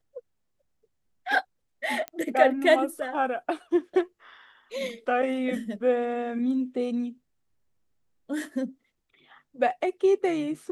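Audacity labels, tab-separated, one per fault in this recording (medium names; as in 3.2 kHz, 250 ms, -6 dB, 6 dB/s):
2.080000	2.080000	pop -18 dBFS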